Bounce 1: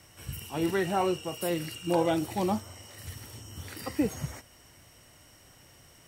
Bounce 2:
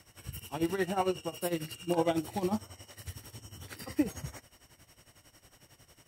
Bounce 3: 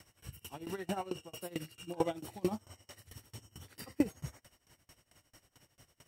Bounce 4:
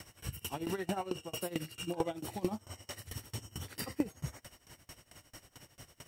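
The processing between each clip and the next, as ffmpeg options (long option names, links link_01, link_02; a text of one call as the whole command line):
ffmpeg -i in.wav -af "tremolo=f=11:d=0.8" out.wav
ffmpeg -i in.wav -af "aeval=exprs='val(0)*pow(10,-22*if(lt(mod(4.5*n/s,1),2*abs(4.5)/1000),1-mod(4.5*n/s,1)/(2*abs(4.5)/1000),(mod(4.5*n/s,1)-2*abs(4.5)/1000)/(1-2*abs(4.5)/1000))/20)':channel_layout=same,volume=1.5dB" out.wav
ffmpeg -i in.wav -af "acompressor=threshold=-44dB:ratio=2.5,volume=9dB" out.wav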